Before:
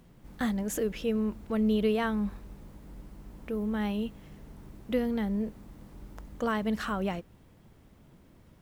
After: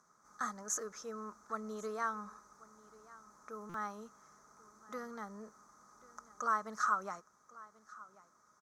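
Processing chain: two resonant band-passes 2.8 kHz, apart 2.3 oct; comb 4.8 ms, depth 30%; delay 1088 ms -20.5 dB; buffer glitch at 3.69 s, samples 256, times 8; trim +9 dB

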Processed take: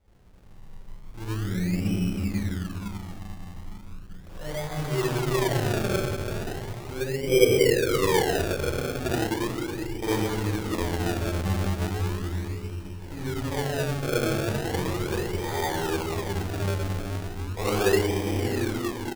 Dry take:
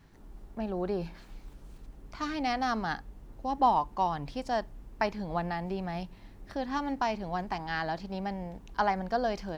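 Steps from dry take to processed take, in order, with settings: fade out at the end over 0.63 s; speakerphone echo 300 ms, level -11 dB; reverberation RT60 2.1 s, pre-delay 21 ms, DRR -12.5 dB; speed mistake 15 ips tape played at 7.5 ips; decimation with a swept rate 31×, swing 100% 0.37 Hz; trim -8 dB

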